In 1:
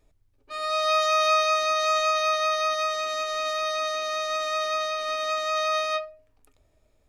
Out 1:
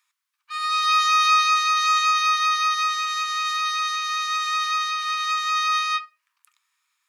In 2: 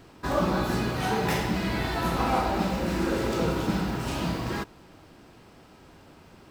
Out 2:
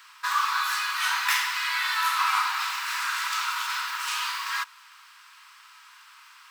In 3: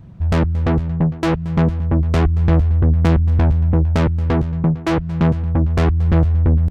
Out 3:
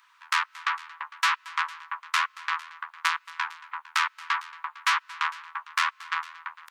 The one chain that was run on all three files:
steep high-pass 1 kHz 72 dB/octave; peak normalisation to -9 dBFS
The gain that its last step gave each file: +5.0 dB, +8.0 dB, +5.0 dB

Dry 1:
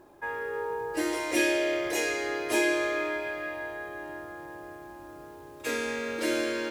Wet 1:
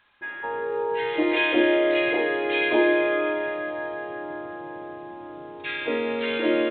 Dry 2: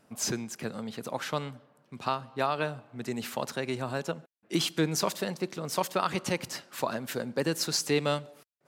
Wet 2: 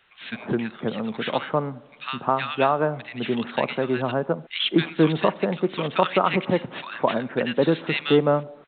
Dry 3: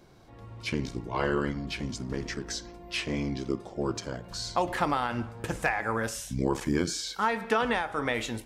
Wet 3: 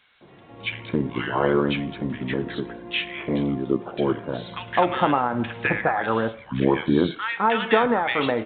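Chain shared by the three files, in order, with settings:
high-pass 140 Hz 12 dB/octave; bands offset in time highs, lows 210 ms, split 1.5 kHz; A-law 64 kbps 8 kHz; normalise loudness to -24 LUFS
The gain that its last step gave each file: +7.0 dB, +9.5 dB, +8.5 dB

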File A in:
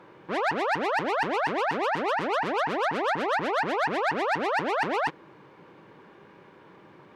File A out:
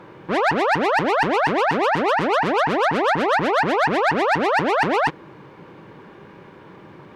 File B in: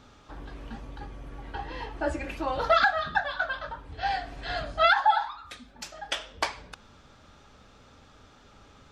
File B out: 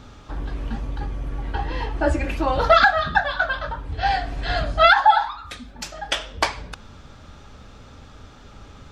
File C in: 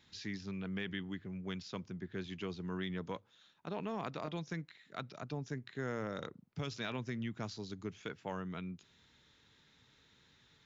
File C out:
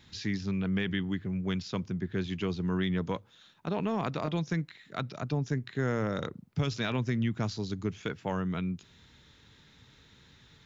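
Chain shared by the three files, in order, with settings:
bass shelf 170 Hz +8 dB; trim +7 dB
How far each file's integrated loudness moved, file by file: +7.5 LU, +6.5 LU, +9.5 LU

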